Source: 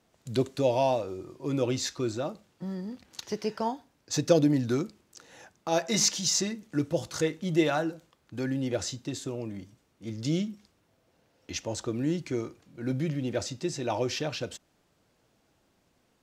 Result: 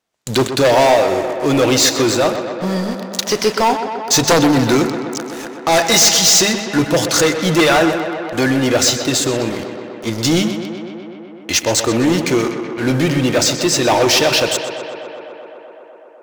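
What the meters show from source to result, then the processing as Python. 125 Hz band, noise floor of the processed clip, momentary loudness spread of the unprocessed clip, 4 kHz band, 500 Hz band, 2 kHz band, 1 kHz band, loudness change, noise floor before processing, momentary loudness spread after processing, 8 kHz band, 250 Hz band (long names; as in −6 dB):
+11.0 dB, −38 dBFS, 14 LU, +19.0 dB, +14.5 dB, +20.5 dB, +17.5 dB, +15.0 dB, −70 dBFS, 14 LU, +17.5 dB, +13.5 dB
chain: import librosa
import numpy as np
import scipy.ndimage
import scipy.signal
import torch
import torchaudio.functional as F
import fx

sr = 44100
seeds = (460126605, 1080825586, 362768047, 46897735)

y = np.minimum(x, 2.0 * 10.0 ** (-17.5 / 20.0) - x)
y = fx.low_shelf(y, sr, hz=500.0, db=-11.0)
y = fx.hum_notches(y, sr, base_hz=50, count=4)
y = fx.leveller(y, sr, passes=5)
y = fx.echo_tape(y, sr, ms=126, feedback_pct=89, wet_db=-8.0, lp_hz=3800.0, drive_db=11.0, wow_cents=15)
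y = y * 10.0 ** (6.0 / 20.0)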